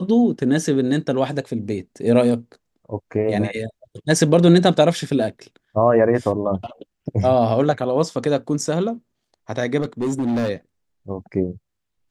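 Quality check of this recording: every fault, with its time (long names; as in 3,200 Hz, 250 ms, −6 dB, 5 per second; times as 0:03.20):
0:09.81–0:10.50: clipping −18 dBFS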